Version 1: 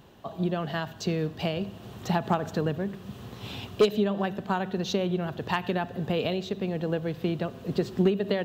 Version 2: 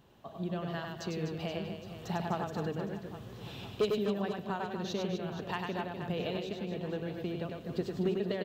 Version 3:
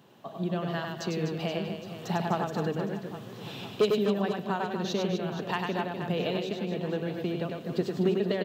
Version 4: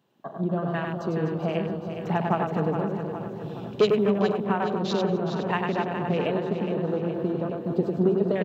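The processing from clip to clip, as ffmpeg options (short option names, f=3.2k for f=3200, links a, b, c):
-af "aecho=1:1:100|250|475|812.5|1319:0.631|0.398|0.251|0.158|0.1,volume=-9dB"
-af "highpass=f=130:w=0.5412,highpass=f=130:w=1.3066,volume=5.5dB"
-filter_complex "[0:a]afwtdn=0.0112,asplit=2[a][b];[b]aecho=0:1:416|832|1248|1664|2080|2496:0.376|0.188|0.094|0.047|0.0235|0.0117[c];[a][c]amix=inputs=2:normalize=0,volume=4dB"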